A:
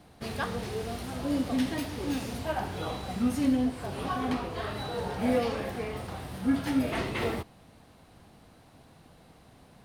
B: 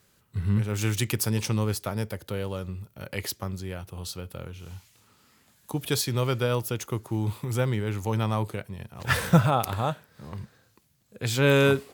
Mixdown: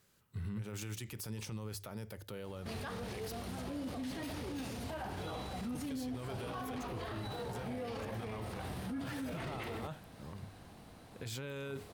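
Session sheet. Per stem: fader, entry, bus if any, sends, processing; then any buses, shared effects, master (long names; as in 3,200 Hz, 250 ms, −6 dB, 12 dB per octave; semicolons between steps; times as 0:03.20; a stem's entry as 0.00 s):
+0.5 dB, 2.45 s, no send, no processing
−7.0 dB, 0.00 s, no send, mains-hum notches 50/100 Hz; brickwall limiter −17 dBFS, peak gain reduction 10.5 dB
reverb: not used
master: brickwall limiter −33.5 dBFS, peak gain reduction 19 dB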